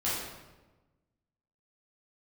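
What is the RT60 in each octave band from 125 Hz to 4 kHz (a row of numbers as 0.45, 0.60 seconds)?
1.6, 1.4, 1.3, 1.1, 0.95, 0.80 seconds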